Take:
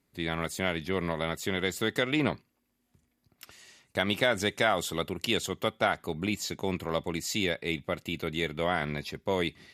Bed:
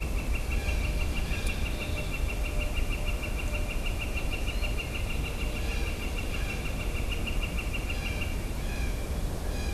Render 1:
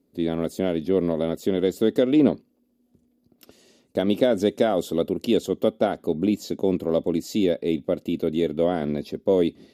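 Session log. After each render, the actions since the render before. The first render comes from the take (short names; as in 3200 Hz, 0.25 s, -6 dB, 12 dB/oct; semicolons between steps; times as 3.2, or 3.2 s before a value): graphic EQ 125/250/500/1000/2000/8000 Hz -3/+12/+10/-5/-10/-5 dB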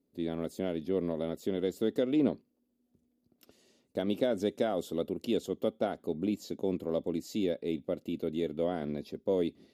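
gain -9.5 dB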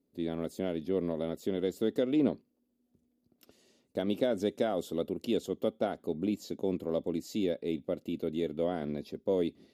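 nothing audible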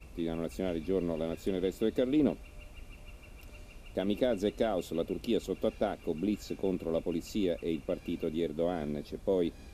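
add bed -19 dB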